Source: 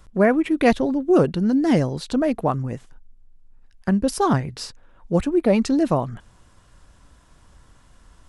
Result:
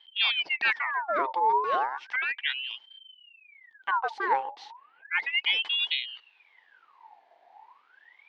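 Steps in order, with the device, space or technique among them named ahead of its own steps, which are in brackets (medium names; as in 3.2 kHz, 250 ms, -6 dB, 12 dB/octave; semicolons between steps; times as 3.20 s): voice changer toy (ring modulator with a swept carrier 1.9 kHz, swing 65%, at 0.34 Hz; cabinet simulation 560–3600 Hz, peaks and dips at 600 Hz -6 dB, 880 Hz +8 dB, 1.3 kHz -8 dB, 2.5 kHz -4 dB); trim -3.5 dB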